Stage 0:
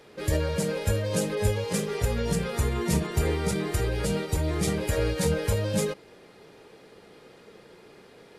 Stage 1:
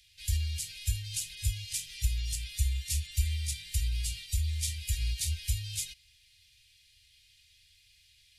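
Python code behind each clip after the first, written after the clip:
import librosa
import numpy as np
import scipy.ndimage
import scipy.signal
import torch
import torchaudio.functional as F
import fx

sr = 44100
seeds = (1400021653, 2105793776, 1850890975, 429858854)

y = scipy.signal.sosfilt(scipy.signal.cheby2(4, 50, [190.0, 1200.0], 'bandstop', fs=sr, output='sos'), x)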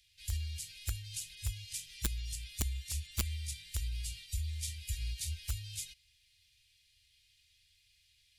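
y = (np.mod(10.0 ** (18.5 / 20.0) * x + 1.0, 2.0) - 1.0) / 10.0 ** (18.5 / 20.0)
y = y * librosa.db_to_amplitude(-6.5)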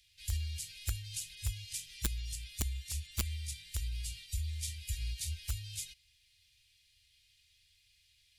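y = fx.rider(x, sr, range_db=10, speed_s=2.0)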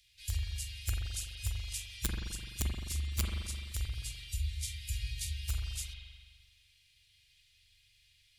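y = fx.rev_spring(x, sr, rt60_s=1.6, pass_ms=(42,), chirp_ms=35, drr_db=-1.0)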